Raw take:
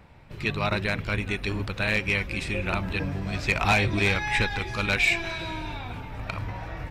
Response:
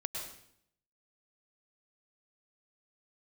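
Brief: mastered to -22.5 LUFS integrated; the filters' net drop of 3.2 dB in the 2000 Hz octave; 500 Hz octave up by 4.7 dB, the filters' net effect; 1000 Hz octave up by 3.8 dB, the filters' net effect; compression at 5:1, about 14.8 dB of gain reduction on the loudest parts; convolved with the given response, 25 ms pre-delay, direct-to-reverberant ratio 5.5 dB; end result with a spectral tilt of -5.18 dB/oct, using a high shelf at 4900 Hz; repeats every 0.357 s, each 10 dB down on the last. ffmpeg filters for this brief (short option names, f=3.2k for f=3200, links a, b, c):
-filter_complex "[0:a]equalizer=f=500:t=o:g=5,equalizer=f=1k:t=o:g=4.5,equalizer=f=2k:t=o:g=-6,highshelf=f=4.9k:g=3.5,acompressor=threshold=-32dB:ratio=5,aecho=1:1:357|714|1071|1428:0.316|0.101|0.0324|0.0104,asplit=2[a][b];[1:a]atrim=start_sample=2205,adelay=25[c];[b][c]afir=irnorm=-1:irlink=0,volume=-7dB[d];[a][d]amix=inputs=2:normalize=0,volume=11.5dB"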